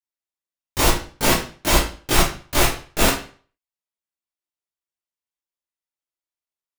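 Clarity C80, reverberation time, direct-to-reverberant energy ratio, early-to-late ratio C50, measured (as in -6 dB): 10.0 dB, 0.40 s, -12.5 dB, 3.5 dB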